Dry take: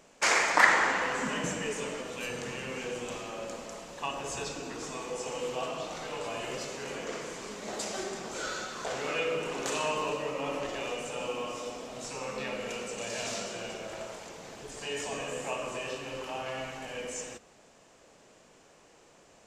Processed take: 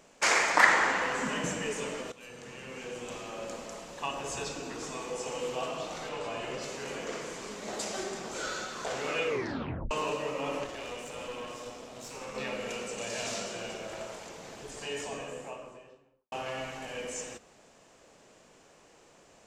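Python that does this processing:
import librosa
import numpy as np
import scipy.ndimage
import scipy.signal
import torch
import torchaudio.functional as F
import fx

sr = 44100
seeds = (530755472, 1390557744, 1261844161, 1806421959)

y = fx.high_shelf(x, sr, hz=fx.line((6.08, 10000.0), (6.62, 6500.0)), db=-12.0, at=(6.08, 6.62), fade=0.02)
y = fx.tube_stage(y, sr, drive_db=33.0, bias=0.75, at=(10.64, 12.35))
y = fx.studio_fade_out(y, sr, start_s=14.68, length_s=1.64)
y = fx.edit(y, sr, fx.fade_in_from(start_s=2.12, length_s=1.4, floor_db=-15.0),
    fx.tape_stop(start_s=9.27, length_s=0.64), tone=tone)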